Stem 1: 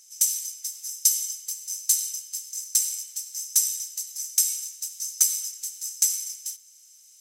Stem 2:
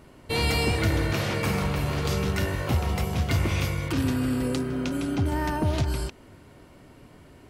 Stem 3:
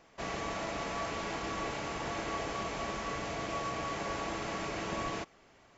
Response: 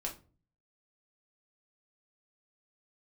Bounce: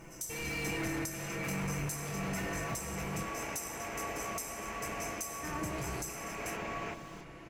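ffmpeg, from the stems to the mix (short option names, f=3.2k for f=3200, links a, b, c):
-filter_complex "[0:a]acrusher=bits=8:mix=0:aa=0.5,volume=-15.5dB,asplit=2[a][b];[b]volume=-6dB[c];[1:a]aecho=1:1:6:0.87,asoftclip=type=hard:threshold=-25.5dB,volume=-4dB,asplit=3[d][e][f];[d]atrim=end=3.23,asetpts=PTS-STARTPTS,afade=t=out:st=3.226:d=0.004:c=hsin[g];[e]atrim=start=3.23:end=5.43,asetpts=PTS-STARTPTS,volume=0[h];[f]atrim=start=5.43,asetpts=PTS-STARTPTS,afade=t=in:d=0.004:c=hsin[i];[g][h][i]concat=n=3:v=0:a=1,asplit=2[j][k];[k]volume=-12.5dB[l];[2:a]adelay=1700,volume=-1.5dB,asplit=3[m][n][o];[n]volume=-14.5dB[p];[o]volume=-12.5dB[q];[j][m]amix=inputs=2:normalize=0,highshelf=f=3.2k:t=q:w=3:g=-7.5,alimiter=level_in=8dB:limit=-24dB:level=0:latency=1,volume=-8dB,volume=0dB[r];[3:a]atrim=start_sample=2205[s];[c][l][p]amix=inputs=3:normalize=0[t];[t][s]afir=irnorm=-1:irlink=0[u];[q]aecho=0:1:296|592|888|1184|1480|1776:1|0.41|0.168|0.0689|0.0283|0.0116[v];[a][r][u][v]amix=inputs=4:normalize=0,alimiter=level_in=2.5dB:limit=-24dB:level=0:latency=1:release=442,volume=-2.5dB"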